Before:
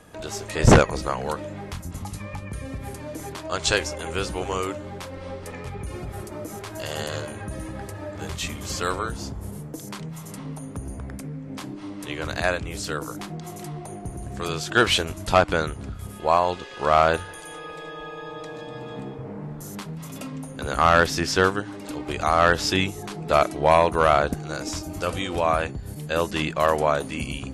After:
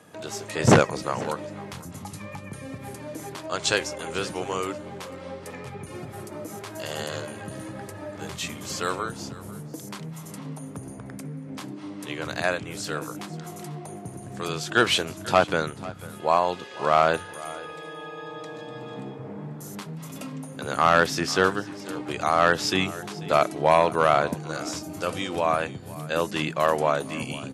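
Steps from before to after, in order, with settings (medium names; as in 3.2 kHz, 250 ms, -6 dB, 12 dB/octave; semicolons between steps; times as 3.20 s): high-pass 110 Hz 24 dB/octave; on a send: delay 493 ms -18.5 dB; on the sum: trim -1.5 dB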